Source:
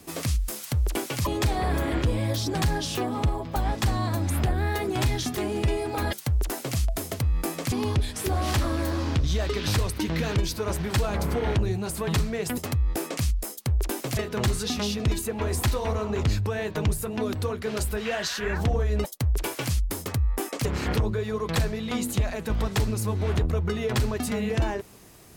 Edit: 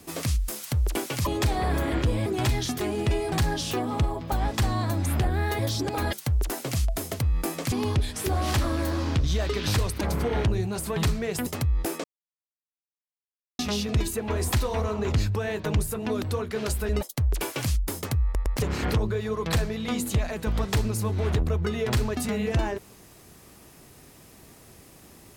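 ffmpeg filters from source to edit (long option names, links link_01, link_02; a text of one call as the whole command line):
ffmpeg -i in.wav -filter_complex "[0:a]asplit=12[link_01][link_02][link_03][link_04][link_05][link_06][link_07][link_08][link_09][link_10][link_11][link_12];[link_01]atrim=end=2.262[link_13];[link_02]atrim=start=4.828:end=5.892[link_14];[link_03]atrim=start=2.558:end=4.832[link_15];[link_04]atrim=start=2.258:end=2.562[link_16];[link_05]atrim=start=5.888:end=10.012[link_17];[link_06]atrim=start=11.118:end=13.15,asetpts=PTS-STARTPTS,afade=type=out:start_time=2.028:duration=0.004:curve=hsin[link_18];[link_07]atrim=start=13.15:end=14.7,asetpts=PTS-STARTPTS,volume=0[link_19];[link_08]atrim=start=14.7:end=18.002,asetpts=PTS-STARTPTS,afade=type=in:duration=0.004:curve=hsin[link_20];[link_09]atrim=start=18.918:end=20.382[link_21];[link_10]atrim=start=20.268:end=20.382[link_22];[link_11]atrim=start=20.268:end=20.382[link_23];[link_12]atrim=start=20.598[link_24];[link_13][link_14]acrossfade=duration=0.004:curve1=hsin:curve2=hsin[link_25];[link_25][link_15]acrossfade=duration=0.004:curve1=hsin:curve2=hsin[link_26];[link_26][link_16]acrossfade=duration=0.004:curve1=hsin:curve2=hsin[link_27];[link_27][link_17]acrossfade=duration=0.004:curve1=hsin:curve2=hsin[link_28];[link_18][link_19][link_20]concat=n=3:v=0:a=1[link_29];[link_28][link_29]acrossfade=duration=0.004:curve1=hsin:curve2=hsin[link_30];[link_30][link_21]acrossfade=duration=0.004:curve1=hsin:curve2=hsin[link_31];[link_31][link_22]acrossfade=duration=0.004:curve1=hsin:curve2=hsin[link_32];[link_32][link_23]acrossfade=duration=0.004:curve1=hsin:curve2=hsin[link_33];[link_33][link_24]acrossfade=duration=0.004:curve1=hsin:curve2=hsin" out.wav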